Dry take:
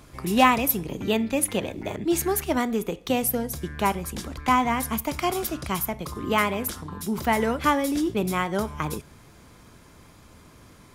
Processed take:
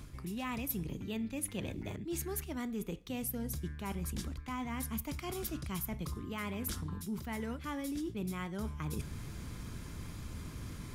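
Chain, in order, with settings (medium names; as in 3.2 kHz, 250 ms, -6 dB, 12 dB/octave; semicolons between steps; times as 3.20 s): bass shelf 210 Hz +8.5 dB; reverse; compression 5:1, threshold -39 dBFS, peak gain reduction 24.5 dB; reverse; peaking EQ 680 Hz -7 dB 1.6 oct; trim +3 dB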